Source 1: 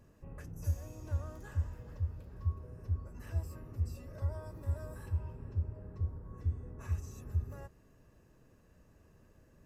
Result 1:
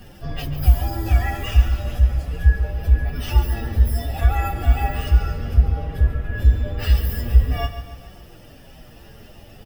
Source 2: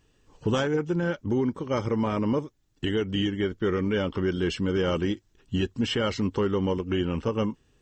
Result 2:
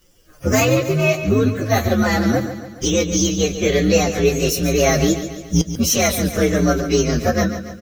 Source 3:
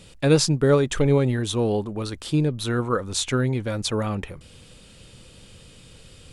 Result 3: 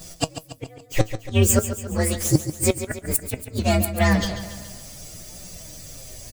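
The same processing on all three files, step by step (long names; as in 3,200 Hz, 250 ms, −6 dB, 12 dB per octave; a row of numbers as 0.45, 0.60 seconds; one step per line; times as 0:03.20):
partials spread apart or drawn together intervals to 128%
high-shelf EQ 2,400 Hz +9 dB
gate with flip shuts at −14 dBFS, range −40 dB
flanger 0.37 Hz, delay 5.3 ms, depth 5.1 ms, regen +62%
on a send: repeating echo 141 ms, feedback 53%, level −11 dB
on the sum: normalise the peak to −3 dBFS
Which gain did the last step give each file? +26.5, +15.0, +13.0 decibels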